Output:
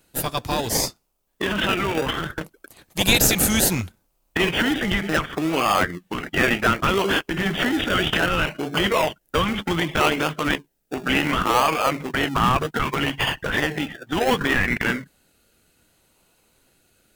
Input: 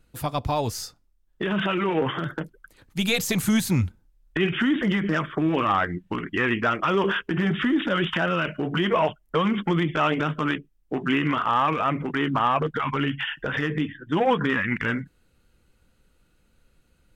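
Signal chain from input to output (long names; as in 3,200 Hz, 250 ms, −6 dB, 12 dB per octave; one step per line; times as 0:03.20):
spectral tilt +3.5 dB per octave
in parallel at −3 dB: sample-and-hold swept by an LFO 33×, swing 60% 0.66 Hz
on the sum: level +1 dB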